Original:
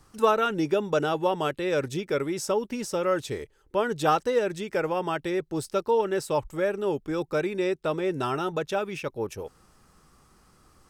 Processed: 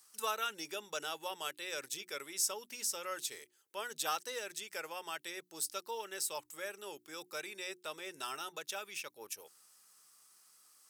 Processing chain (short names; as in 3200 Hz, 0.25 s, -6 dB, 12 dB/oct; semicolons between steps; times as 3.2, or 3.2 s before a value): HPF 100 Hz; differentiator; notches 60/120/180/240/300/360 Hz; gain +3 dB